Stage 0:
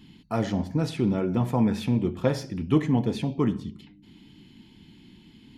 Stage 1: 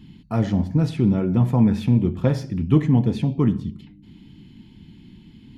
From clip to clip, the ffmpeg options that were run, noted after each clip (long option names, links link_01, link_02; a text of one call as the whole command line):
ffmpeg -i in.wav -af "bass=frequency=250:gain=9,treble=frequency=4000:gain=-3" out.wav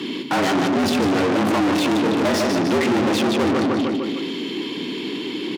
ffmpeg -i in.wav -filter_complex "[0:a]aecho=1:1:151|302|453|604|755:0.422|0.198|0.0932|0.0438|0.0206,asplit=2[link_01][link_02];[link_02]highpass=frequency=720:poles=1,volume=43dB,asoftclip=type=tanh:threshold=-5dB[link_03];[link_01][link_03]amix=inputs=2:normalize=0,lowpass=frequency=5100:poles=1,volume=-6dB,afreqshift=88,volume=-7.5dB" out.wav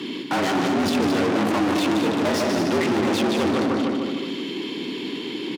ffmpeg -i in.wav -af "aecho=1:1:219:0.422,volume=-3dB" out.wav